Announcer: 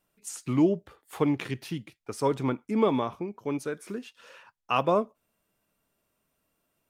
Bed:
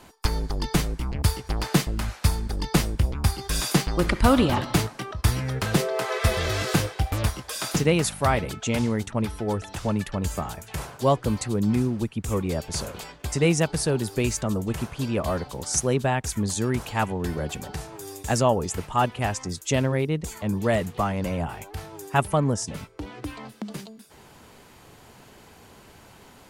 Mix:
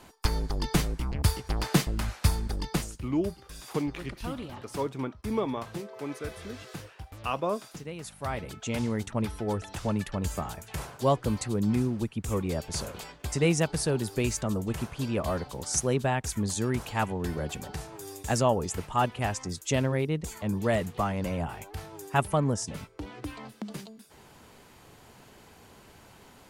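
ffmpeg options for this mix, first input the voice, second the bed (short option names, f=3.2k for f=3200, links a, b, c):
-filter_complex "[0:a]adelay=2550,volume=-5.5dB[a];[1:a]volume=13dB,afade=t=out:st=2.5:d=0.46:silence=0.149624,afade=t=in:st=7.97:d=1.13:silence=0.16788[b];[a][b]amix=inputs=2:normalize=0"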